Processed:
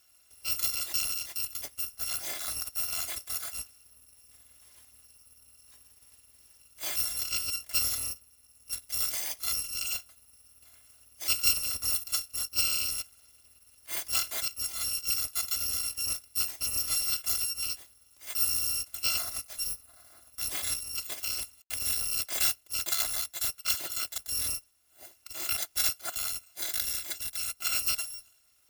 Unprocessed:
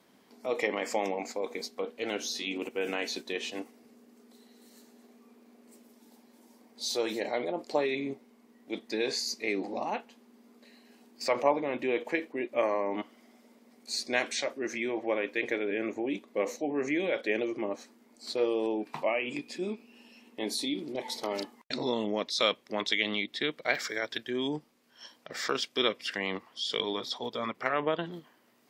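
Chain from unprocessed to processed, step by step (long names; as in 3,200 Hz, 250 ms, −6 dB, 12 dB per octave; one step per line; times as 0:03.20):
samples in bit-reversed order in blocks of 256 samples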